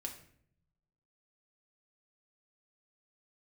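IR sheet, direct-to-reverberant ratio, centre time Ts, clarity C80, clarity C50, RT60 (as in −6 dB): 1.5 dB, 17 ms, 12.5 dB, 9.5 dB, 0.60 s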